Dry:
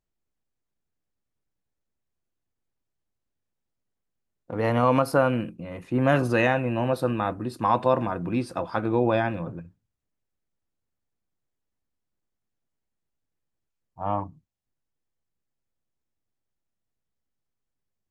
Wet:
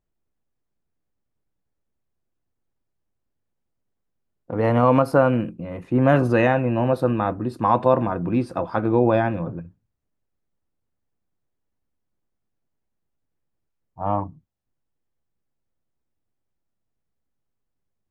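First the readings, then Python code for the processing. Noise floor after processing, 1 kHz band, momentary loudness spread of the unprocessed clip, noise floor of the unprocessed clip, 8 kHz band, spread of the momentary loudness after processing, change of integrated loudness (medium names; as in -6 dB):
-78 dBFS, +3.0 dB, 14 LU, -82 dBFS, no reading, 14 LU, +4.0 dB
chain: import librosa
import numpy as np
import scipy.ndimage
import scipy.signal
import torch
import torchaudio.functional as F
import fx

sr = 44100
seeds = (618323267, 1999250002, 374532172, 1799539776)

y = fx.high_shelf(x, sr, hz=2100.0, db=-10.5)
y = F.gain(torch.from_numpy(y), 5.0).numpy()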